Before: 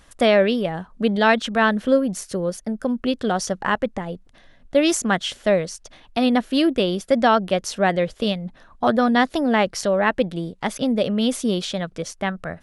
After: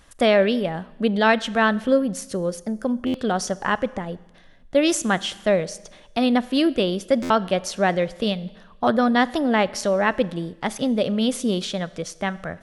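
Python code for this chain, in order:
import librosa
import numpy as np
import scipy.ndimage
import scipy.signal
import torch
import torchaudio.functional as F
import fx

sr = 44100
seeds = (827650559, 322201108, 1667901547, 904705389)

y = fx.rev_schroeder(x, sr, rt60_s=1.1, comb_ms=29, drr_db=18.5)
y = fx.buffer_glitch(y, sr, at_s=(3.06, 7.22), block=512, repeats=6)
y = F.gain(torch.from_numpy(y), -1.0).numpy()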